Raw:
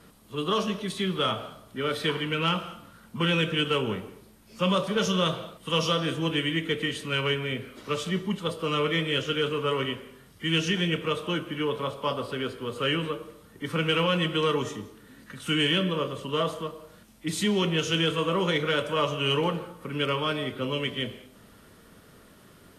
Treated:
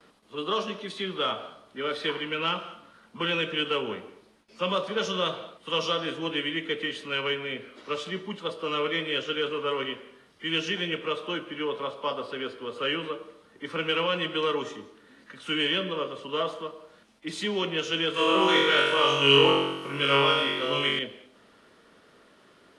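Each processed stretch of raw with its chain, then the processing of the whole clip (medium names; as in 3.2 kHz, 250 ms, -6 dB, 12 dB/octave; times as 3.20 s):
18.14–20.99 s: treble shelf 4.6 kHz +9.5 dB + flutter echo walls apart 3.7 m, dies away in 0.98 s
whole clip: elliptic low-pass 11 kHz, stop band 40 dB; three-band isolator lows -15 dB, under 250 Hz, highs -12 dB, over 5.3 kHz; gate with hold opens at -52 dBFS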